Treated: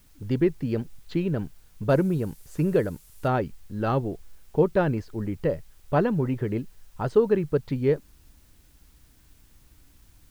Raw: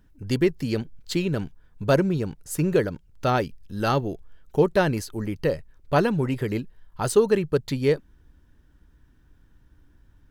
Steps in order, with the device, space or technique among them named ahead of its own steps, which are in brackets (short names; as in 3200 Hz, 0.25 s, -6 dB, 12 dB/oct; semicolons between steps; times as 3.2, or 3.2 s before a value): cassette deck with a dirty head (tape spacing loss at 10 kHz 33 dB; wow and flutter; white noise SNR 36 dB); 1.89–3.28 bell 11000 Hz +11 dB 1.6 oct